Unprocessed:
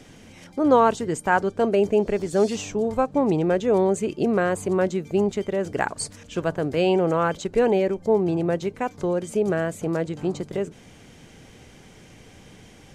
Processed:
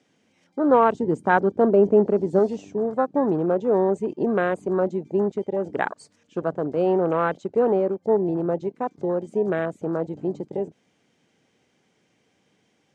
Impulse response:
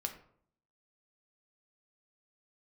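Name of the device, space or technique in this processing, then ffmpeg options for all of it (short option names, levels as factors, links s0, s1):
over-cleaned archive recording: -filter_complex "[0:a]asettb=1/sr,asplit=3[s0][s1][s2];[s0]atrim=end=0.934[s3];[s1]atrim=start=0.93:end=2.39,asetpts=PTS-STARTPTS,afade=t=in:d=0.004:c=qsin,afade=t=out:st=1.456:d=0.004:c=qsin,equalizer=f=180:w=0.44:g=6[s4];[s2]atrim=start=2.386[s5];[s3][s4]acrossfade=d=0.004:c1=hsin:c2=qsin[s6];[s6][s5]acrossfade=d=0.004:c1=qsin:c2=hsin,highpass=180,lowpass=7700,afwtdn=0.0316"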